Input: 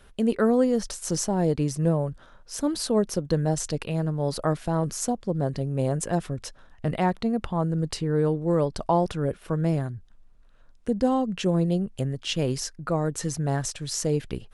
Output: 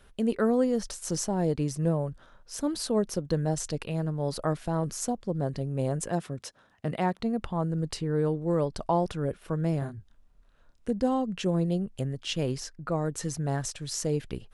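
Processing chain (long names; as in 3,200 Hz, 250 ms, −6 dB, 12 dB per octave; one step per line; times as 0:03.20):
0:06.09–0:07.20: high-pass filter 120 Hz 12 dB per octave
0:09.79–0:10.91: double-tracking delay 28 ms −4 dB
0:12.51–0:12.92: high-shelf EQ 6,100 Hz −7.5 dB
level −3.5 dB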